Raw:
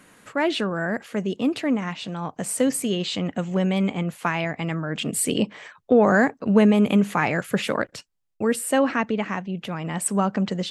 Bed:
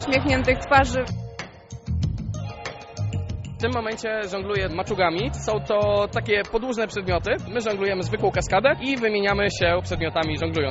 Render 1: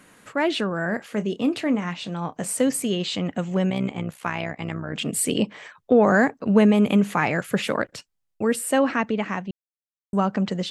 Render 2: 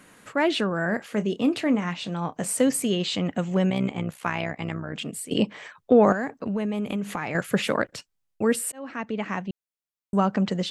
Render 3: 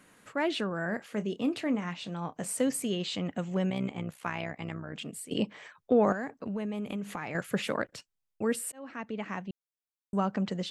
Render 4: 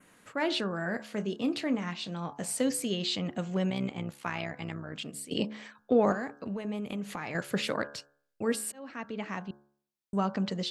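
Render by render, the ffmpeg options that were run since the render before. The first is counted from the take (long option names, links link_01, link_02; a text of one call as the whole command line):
ffmpeg -i in.wav -filter_complex "[0:a]asettb=1/sr,asplit=3[link_01][link_02][link_03];[link_01]atrim=end=0.824[link_04];[link_02]atrim=start=0.82:end=2.53,asetpts=PTS-STARTPTS,afade=type=in:duration=0.004:curve=qsin,afade=type=out:start_time=1.706:duration=0.004:curve=qsin,asplit=2[link_05][link_06];[link_06]adelay=29,volume=-13dB[link_07];[link_05][link_07]amix=inputs=2:normalize=0,atrim=end_sample=75411[link_08];[link_03]atrim=start=2.526[link_09];[link_04][link_08]acrossfade=duration=0.004:curve1=hsin:curve2=qsin[link_10];[link_10][link_09]acrossfade=duration=0.004:curve1=qsin:curve2=hsin,asettb=1/sr,asplit=3[link_11][link_12][link_13];[link_11]atrim=end=3.704[link_14];[link_12]atrim=start=3.7:end=4.94,asetpts=PTS-STARTPTS,afade=type=in:duration=0.004:curve=qsin,afade=type=out:start_time=1.236:duration=0.004:curve=qsin,tremolo=f=64:d=0.75[link_15];[link_13]atrim=start=4.936[link_16];[link_14][link_15]acrossfade=duration=0.004:curve1=hsin:curve2=qsin[link_17];[link_17][link_16]acrossfade=duration=0.004:curve1=qsin:curve2=hsin,asplit=3[link_18][link_19][link_20];[link_18]atrim=end=9.51,asetpts=PTS-STARTPTS,afade=type=out:start_time=9.506:duration=0.004:curve=hsin[link_21];[link_19]atrim=start=9.51:end=10.13,asetpts=PTS-STARTPTS,volume=0[link_22];[link_20]atrim=start=10.13,asetpts=PTS-STARTPTS,afade=type=in:duration=0.004:curve=hsin[link_23];[link_21][link_22][link_23]concat=n=3:v=0:a=1" out.wav
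ffmpeg -i in.wav -filter_complex "[0:a]asettb=1/sr,asplit=3[link_01][link_02][link_03];[link_01]atrim=end=6.124[link_04];[link_02]atrim=start=6.12:end=7.35,asetpts=PTS-STARTPTS,afade=type=in:duration=0.004:curve=qsin,afade=type=out:start_time=1.226:duration=0.004:curve=qsin,acompressor=threshold=-26dB:ratio=4:attack=3.2:release=140:knee=1:detection=peak[link_05];[link_03]atrim=start=7.346[link_06];[link_04][link_05]acrossfade=duration=0.004:curve1=hsin:curve2=qsin[link_07];[link_07][link_06]acrossfade=duration=0.004:curve1=qsin:curve2=hsin,asplit=3[link_08][link_09][link_10];[link_08]atrim=end=5.31,asetpts=PTS-STARTPTS,afade=type=out:start_time=4.47:duration=0.84:curve=qsin:silence=0.112202[link_11];[link_09]atrim=start=5.31:end=8.72,asetpts=PTS-STARTPTS,afade=type=in:duration=0.004:curve=hsin:silence=0.112202,afade=type=out:start_time=3.406:duration=0.004:curve=hsin[link_12];[link_10]atrim=start=8.72,asetpts=PTS-STARTPTS,afade=type=in:duration=0.74[link_13];[link_11][link_12][link_13]concat=n=3:v=0:a=1" out.wav
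ffmpeg -i in.wav -af "volume=-7dB" out.wav
ffmpeg -i in.wav -af "adynamicequalizer=threshold=0.00158:dfrequency=4500:dqfactor=1.7:tfrequency=4500:tqfactor=1.7:attack=5:release=100:ratio=0.375:range=3.5:mode=boostabove:tftype=bell,bandreject=frequency=71.53:width_type=h:width=4,bandreject=frequency=143.06:width_type=h:width=4,bandreject=frequency=214.59:width_type=h:width=4,bandreject=frequency=286.12:width_type=h:width=4,bandreject=frequency=357.65:width_type=h:width=4,bandreject=frequency=429.18:width_type=h:width=4,bandreject=frequency=500.71:width_type=h:width=4,bandreject=frequency=572.24:width_type=h:width=4,bandreject=frequency=643.77:width_type=h:width=4,bandreject=frequency=715.3:width_type=h:width=4,bandreject=frequency=786.83:width_type=h:width=4,bandreject=frequency=858.36:width_type=h:width=4,bandreject=frequency=929.89:width_type=h:width=4,bandreject=frequency=1001.42:width_type=h:width=4,bandreject=frequency=1072.95:width_type=h:width=4,bandreject=frequency=1144.48:width_type=h:width=4,bandreject=frequency=1216.01:width_type=h:width=4,bandreject=frequency=1287.54:width_type=h:width=4,bandreject=frequency=1359.07:width_type=h:width=4,bandreject=frequency=1430.6:width_type=h:width=4,bandreject=frequency=1502.13:width_type=h:width=4,bandreject=frequency=1573.66:width_type=h:width=4,bandreject=frequency=1645.19:width_type=h:width=4,bandreject=frequency=1716.72:width_type=h:width=4" out.wav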